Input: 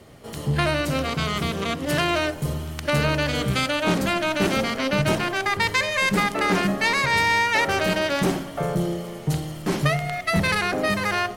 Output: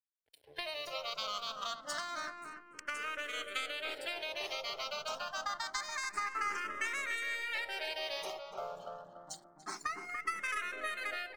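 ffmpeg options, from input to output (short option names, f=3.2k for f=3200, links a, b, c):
-filter_complex "[0:a]lowpass=7.5k,aemphasis=mode=production:type=riaa,afftdn=nr=29:nf=-29,highpass=480,equalizer=f=1.3k:w=5.6:g=8,acompressor=threshold=-23dB:ratio=6,aeval=exprs='sgn(val(0))*max(abs(val(0))-0.00631,0)':c=same,aeval=exprs='0.376*(cos(1*acos(clip(val(0)/0.376,-1,1)))-cos(1*PI/2))+0.0266*(cos(4*acos(clip(val(0)/0.376,-1,1)))-cos(4*PI/2))':c=same,asplit=2[a][b];[b]adelay=289,lowpass=f=1.1k:p=1,volume=-3dB,asplit=2[c][d];[d]adelay=289,lowpass=f=1.1k:p=1,volume=0.52,asplit=2[e][f];[f]adelay=289,lowpass=f=1.1k:p=1,volume=0.52,asplit=2[g][h];[h]adelay=289,lowpass=f=1.1k:p=1,volume=0.52,asplit=2[i][j];[j]adelay=289,lowpass=f=1.1k:p=1,volume=0.52,asplit=2[k][l];[l]adelay=289,lowpass=f=1.1k:p=1,volume=0.52,asplit=2[m][n];[n]adelay=289,lowpass=f=1.1k:p=1,volume=0.52[o];[a][c][e][g][i][k][m][o]amix=inputs=8:normalize=0,asplit=2[p][q];[q]afreqshift=0.27[r];[p][r]amix=inputs=2:normalize=1,volume=-8dB"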